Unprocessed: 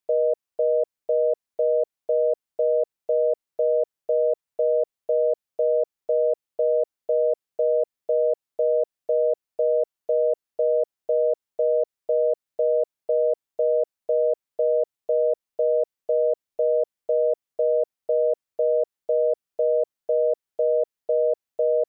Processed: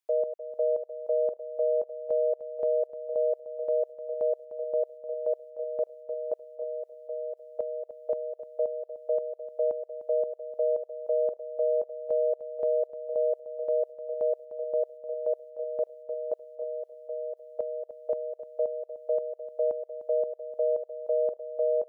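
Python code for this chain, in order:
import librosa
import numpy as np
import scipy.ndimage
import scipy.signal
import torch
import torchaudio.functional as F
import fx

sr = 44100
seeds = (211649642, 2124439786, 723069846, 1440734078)

y = scipy.signal.sosfilt(scipy.signal.butter(2, 520.0, 'highpass', fs=sr, output='sos'), x)
y = fx.chopper(y, sr, hz=1.9, depth_pct=65, duty_pct=45)
y = fx.echo_feedback(y, sr, ms=302, feedback_pct=18, wet_db=-13)
y = y * 10.0 ** (-2.0 / 20.0)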